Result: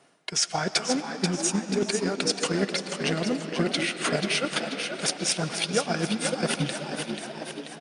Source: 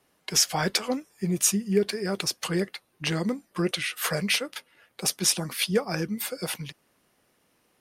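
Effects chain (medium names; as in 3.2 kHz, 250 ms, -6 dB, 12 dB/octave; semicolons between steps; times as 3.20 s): small resonant body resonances 680/1400 Hz, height 8 dB; reverse; compression 6:1, threshold -34 dBFS, peak gain reduction 16.5 dB; reverse; FFT band-pass 100–10000 Hz; frequency-shifting echo 486 ms, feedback 57%, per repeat +68 Hz, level -6 dB; on a send at -6.5 dB: reverberation RT60 4.1 s, pre-delay 70 ms; on the sum: transient shaper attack +6 dB, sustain -3 dB; trim +7.5 dB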